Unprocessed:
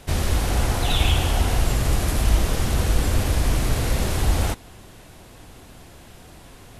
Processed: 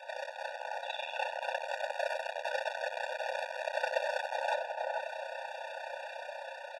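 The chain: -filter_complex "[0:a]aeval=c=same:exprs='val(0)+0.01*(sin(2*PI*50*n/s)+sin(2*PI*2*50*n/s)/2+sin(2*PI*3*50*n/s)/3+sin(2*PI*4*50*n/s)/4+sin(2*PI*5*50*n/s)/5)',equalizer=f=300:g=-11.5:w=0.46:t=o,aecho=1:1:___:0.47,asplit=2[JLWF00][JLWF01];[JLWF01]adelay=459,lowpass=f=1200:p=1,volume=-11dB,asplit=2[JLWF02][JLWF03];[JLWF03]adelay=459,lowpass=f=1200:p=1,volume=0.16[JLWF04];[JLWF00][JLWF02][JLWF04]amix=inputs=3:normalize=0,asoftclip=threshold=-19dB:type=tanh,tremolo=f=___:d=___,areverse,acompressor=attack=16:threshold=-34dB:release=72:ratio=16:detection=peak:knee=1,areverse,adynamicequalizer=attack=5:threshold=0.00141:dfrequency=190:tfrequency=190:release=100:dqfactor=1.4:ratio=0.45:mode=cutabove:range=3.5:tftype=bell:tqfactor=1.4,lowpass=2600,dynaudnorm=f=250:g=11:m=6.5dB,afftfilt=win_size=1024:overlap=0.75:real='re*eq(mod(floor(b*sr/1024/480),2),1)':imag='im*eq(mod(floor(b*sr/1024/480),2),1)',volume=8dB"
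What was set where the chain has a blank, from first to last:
3.4, 31, 0.571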